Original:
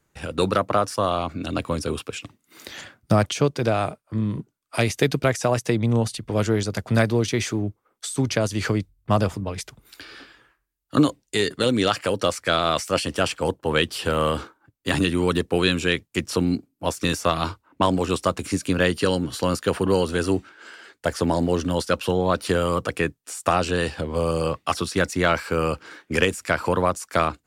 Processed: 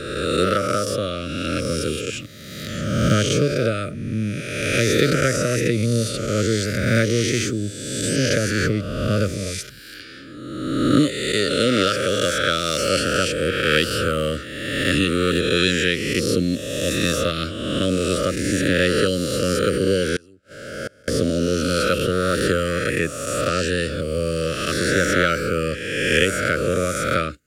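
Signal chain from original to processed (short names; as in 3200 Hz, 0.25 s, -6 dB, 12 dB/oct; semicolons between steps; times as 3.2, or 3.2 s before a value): spectral swells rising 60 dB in 1.58 s; elliptic band-stop 580–1300 Hz, stop band 50 dB; 20.16–21.08 flipped gate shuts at -16 dBFS, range -29 dB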